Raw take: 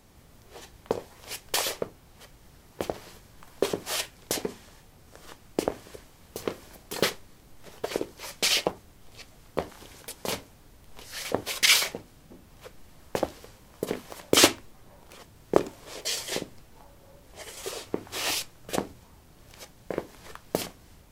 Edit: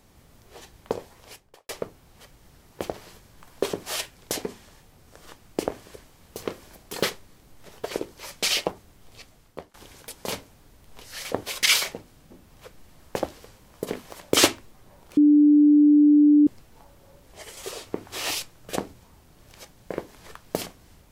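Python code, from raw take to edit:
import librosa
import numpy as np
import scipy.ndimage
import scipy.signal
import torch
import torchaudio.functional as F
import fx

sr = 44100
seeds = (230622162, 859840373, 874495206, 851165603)

y = fx.studio_fade_out(x, sr, start_s=1.06, length_s=0.63)
y = fx.edit(y, sr, fx.fade_out_to(start_s=9.19, length_s=0.55, floor_db=-21.5),
    fx.bleep(start_s=15.17, length_s=1.3, hz=295.0, db=-12.0), tone=tone)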